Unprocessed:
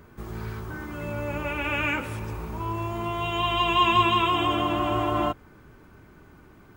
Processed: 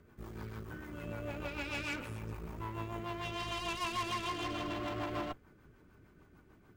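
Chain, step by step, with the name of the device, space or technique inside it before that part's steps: overdriven rotary cabinet (tube stage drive 28 dB, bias 0.75; rotary speaker horn 6.7 Hz); gain -4 dB

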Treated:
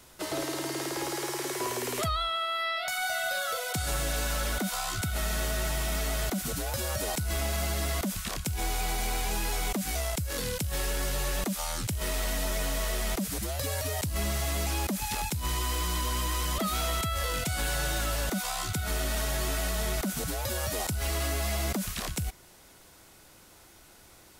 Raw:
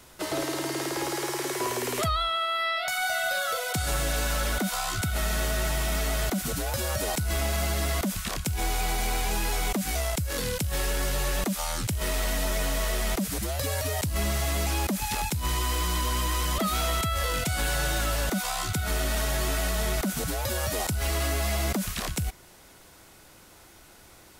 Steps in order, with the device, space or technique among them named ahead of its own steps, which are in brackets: exciter from parts (in parallel at -13.5 dB: HPF 2500 Hz + soft clip -30.5 dBFS, distortion -14 dB); on the sum: gain -3 dB

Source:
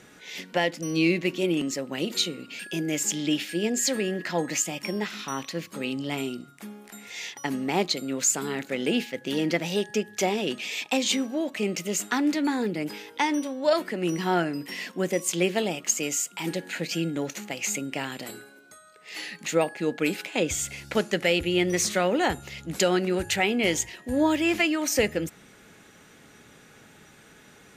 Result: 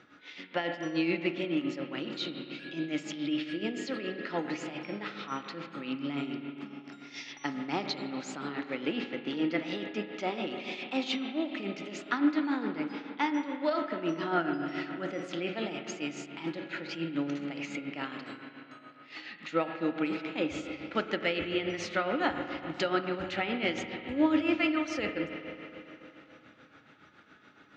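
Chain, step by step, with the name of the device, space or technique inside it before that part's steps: 6.66–7.91 bell 5500 Hz +13.5 dB 0.35 oct; combo amplifier with spring reverb and tremolo (spring tank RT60 3.4 s, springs 35/49 ms, chirp 45 ms, DRR 4.5 dB; tremolo 7.1 Hz, depth 59%; speaker cabinet 90–4500 Hz, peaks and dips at 180 Hz -4 dB, 300 Hz +6 dB, 420 Hz -5 dB, 1300 Hz +9 dB); gain -5.5 dB

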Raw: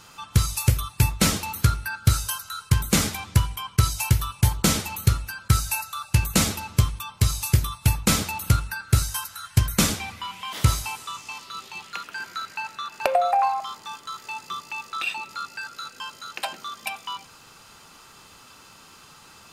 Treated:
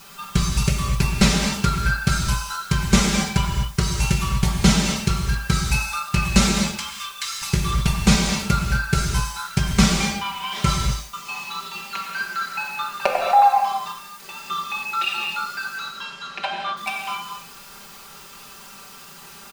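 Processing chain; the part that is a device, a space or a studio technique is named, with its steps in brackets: 6.74–7.42 inverse Chebyshev high-pass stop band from 600 Hz, stop band 40 dB; worn cassette (LPF 6600 Hz 12 dB/oct; wow and flutter 47 cents; level dips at 3.5/10.86/13.92, 0.269 s -27 dB; white noise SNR 25 dB); comb 5.1 ms, depth 82%; 15.78–16.76 LPF 6500 Hz -> 3200 Hz 12 dB/oct; non-linear reverb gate 0.28 s flat, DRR 0.5 dB

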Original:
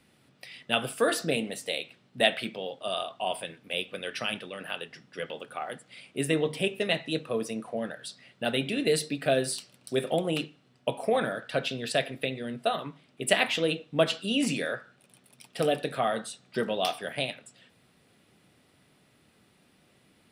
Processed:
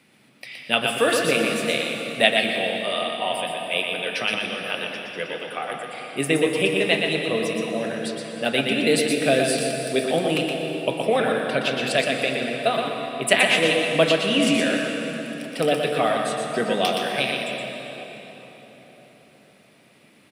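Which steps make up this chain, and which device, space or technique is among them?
PA in a hall (HPF 130 Hz; bell 2300 Hz +6 dB 0.36 oct; echo 0.12 s -5 dB; reverb RT60 4.1 s, pre-delay 0.109 s, DRR 4 dB); gain +4.5 dB

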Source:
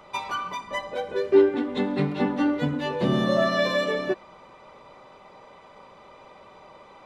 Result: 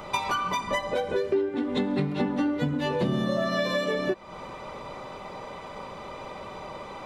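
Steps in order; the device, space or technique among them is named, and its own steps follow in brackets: ASMR close-microphone chain (low shelf 250 Hz +6 dB; compressor 6:1, threshold -33 dBFS, peak gain reduction 21 dB; high shelf 6600 Hz +6 dB); gain +8.5 dB

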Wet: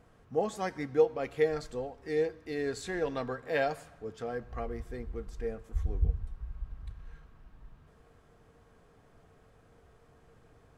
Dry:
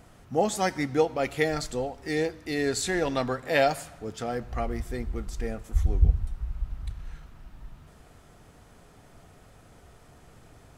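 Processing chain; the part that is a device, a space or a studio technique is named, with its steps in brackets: inside a helmet (high shelf 4500 Hz -9 dB; small resonant body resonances 460/1100/1600 Hz, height 10 dB, ringing for 85 ms); gain -8 dB

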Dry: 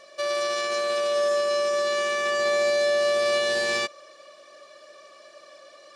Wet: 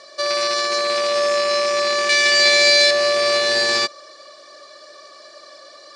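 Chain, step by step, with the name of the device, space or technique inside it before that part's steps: 2.09–2.91 resonant high shelf 1700 Hz +7 dB, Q 3; car door speaker with a rattle (rattling part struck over -43 dBFS, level -23 dBFS; speaker cabinet 110–9300 Hz, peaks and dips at 180 Hz -8 dB, 550 Hz -4 dB, 2700 Hz -9 dB, 4500 Hz +9 dB); gain +7 dB

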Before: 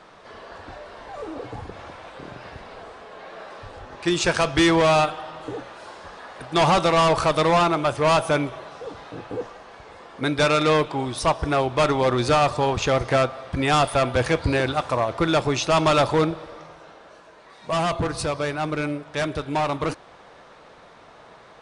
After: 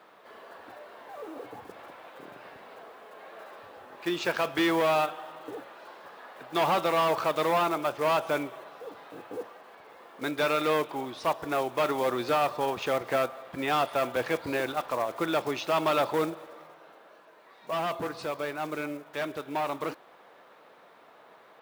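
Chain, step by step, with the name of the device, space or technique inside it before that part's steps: early digital voice recorder (BPF 250–3700 Hz; block floating point 5-bit); gain -6.5 dB

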